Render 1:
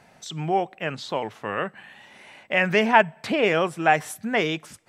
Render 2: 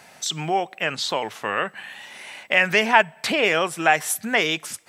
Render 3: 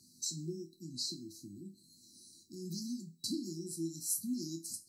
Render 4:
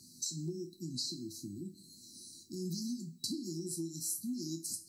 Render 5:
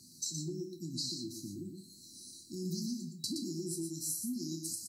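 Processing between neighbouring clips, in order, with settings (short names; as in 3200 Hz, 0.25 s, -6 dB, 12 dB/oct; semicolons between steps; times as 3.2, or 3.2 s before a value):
in parallel at +2.5 dB: compressor, threshold -27 dBFS, peak gain reduction 16 dB; on the sum: tilt +2.5 dB/oct; gain -1.5 dB
resonator bank E2 minor, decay 0.26 s; FFT band-reject 370–3900 Hz; gain +2.5 dB
compressor 4:1, threshold -42 dBFS, peak gain reduction 10.5 dB; on a send at -18.5 dB: reverb RT60 0.80 s, pre-delay 16 ms; on the sum: gain +6 dB
echo 0.119 s -6 dB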